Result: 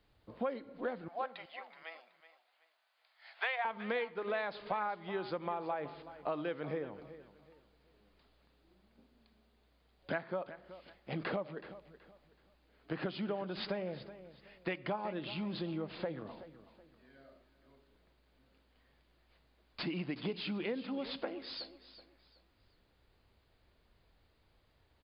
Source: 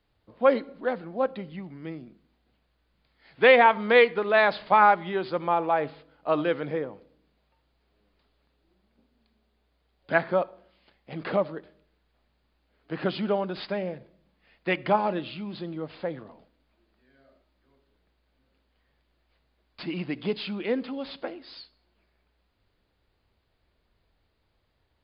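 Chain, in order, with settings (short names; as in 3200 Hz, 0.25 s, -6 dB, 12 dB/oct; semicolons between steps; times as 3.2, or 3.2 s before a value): 1.08–3.65 Chebyshev high-pass 660 Hz, order 4; compressor 6:1, threshold -36 dBFS, peak gain reduction 21 dB; on a send: feedback echo 0.375 s, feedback 29%, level -14.5 dB; on the sum: gain +1 dB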